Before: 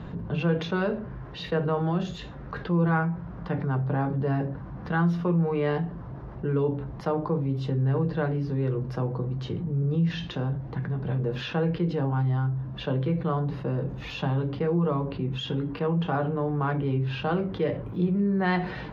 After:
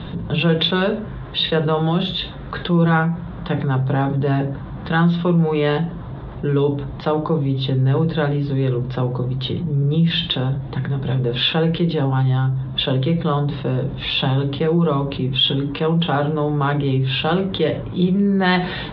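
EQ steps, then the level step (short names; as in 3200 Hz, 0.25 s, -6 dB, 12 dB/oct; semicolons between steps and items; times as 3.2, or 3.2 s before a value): synth low-pass 3600 Hz, resonance Q 7.1; air absorption 89 m; +7.5 dB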